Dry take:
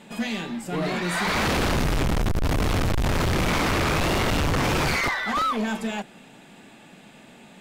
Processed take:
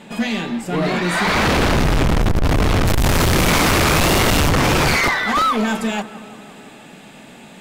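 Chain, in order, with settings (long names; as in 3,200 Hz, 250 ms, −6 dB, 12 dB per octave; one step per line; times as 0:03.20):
high-shelf EQ 6,200 Hz −4.5 dB, from 0:02.87 +9.5 dB, from 0:04.49 +2.5 dB
tape delay 168 ms, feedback 81%, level −15.5 dB, low-pass 2,200 Hz
level +7 dB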